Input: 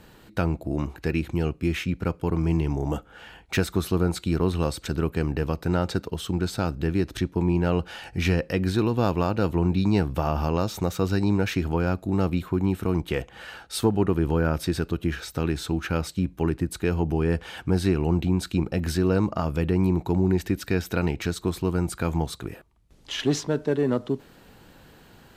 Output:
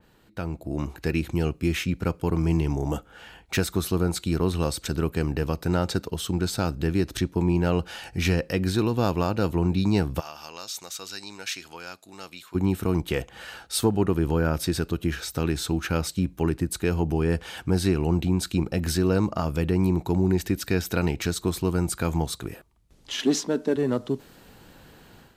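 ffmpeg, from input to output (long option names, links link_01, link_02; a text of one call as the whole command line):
ffmpeg -i in.wav -filter_complex "[0:a]asplit=3[link_01][link_02][link_03];[link_01]afade=type=out:start_time=10.19:duration=0.02[link_04];[link_02]bandpass=frequency=5600:width_type=q:width=0.64,afade=type=in:start_time=10.19:duration=0.02,afade=type=out:start_time=12.54:duration=0.02[link_05];[link_03]afade=type=in:start_time=12.54:duration=0.02[link_06];[link_04][link_05][link_06]amix=inputs=3:normalize=0,asettb=1/sr,asplit=3[link_07][link_08][link_09];[link_07]atrim=end=23.134[link_10];[link_08]atrim=start=23.13:end=23.76,asetpts=PTS-STARTPTS,afade=type=in:duration=0.004:curve=qsin,afade=type=out:start_time=0.626:duration=0.004:curve=qsin,lowshelf=frequency=160:width_type=q:width=3:gain=-9.5[link_11];[link_09]atrim=start=23.756[link_12];[link_10][link_11]acrossfade=duration=0.004:curve1=hsin:curve2=qsin[link_13];[link_13][link_12]acrossfade=duration=0.004:curve1=qsin:curve2=hsin,dynaudnorm=framelen=450:gausssize=3:maxgain=10dB,adynamicequalizer=threshold=0.00891:dfrequency=4000:dqfactor=0.7:tfrequency=4000:tqfactor=0.7:attack=5:release=100:ratio=0.375:range=3:mode=boostabove:tftype=highshelf,volume=-8.5dB" out.wav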